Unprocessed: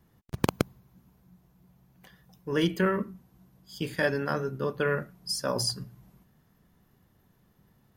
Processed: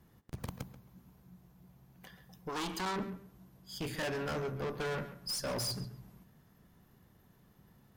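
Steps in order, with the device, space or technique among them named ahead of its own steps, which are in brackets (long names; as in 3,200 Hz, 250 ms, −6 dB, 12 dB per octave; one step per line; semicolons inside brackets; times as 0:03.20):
rockabilly slapback (tube saturation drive 35 dB, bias 0.3; tape delay 136 ms, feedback 20%, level −11.5 dB, low-pass 3,600 Hz)
0:02.49–0:02.96: octave-band graphic EQ 125/500/1,000/2,000/4,000/8,000 Hz −10/−9/+10/−4/+4/+4 dB
level +1.5 dB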